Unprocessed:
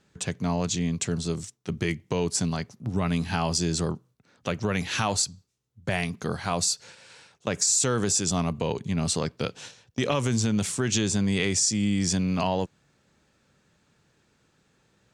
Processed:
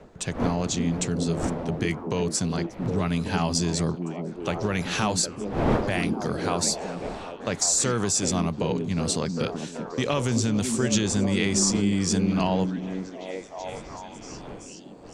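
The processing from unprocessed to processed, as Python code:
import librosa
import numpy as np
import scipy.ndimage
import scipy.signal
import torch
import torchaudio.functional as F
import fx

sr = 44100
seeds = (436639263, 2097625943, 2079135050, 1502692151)

y = fx.dmg_wind(x, sr, seeds[0], corner_hz=550.0, level_db=-37.0)
y = fx.echo_stepped(y, sr, ms=381, hz=250.0, octaves=0.7, feedback_pct=70, wet_db=-1)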